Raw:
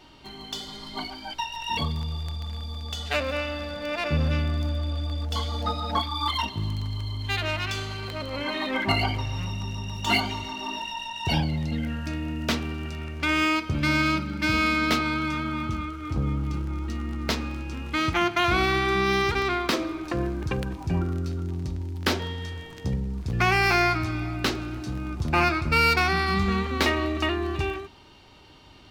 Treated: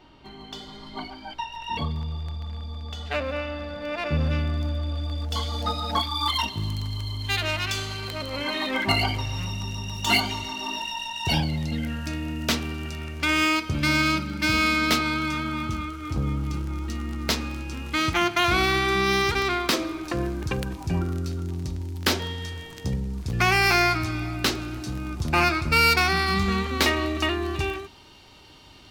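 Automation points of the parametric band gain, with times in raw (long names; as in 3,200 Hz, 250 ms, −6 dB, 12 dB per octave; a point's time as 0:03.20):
parametric band 14,000 Hz 2.2 octaves
0:03.65 −12 dB
0:04.29 −3.5 dB
0:04.87 −3.5 dB
0:05.75 +8 dB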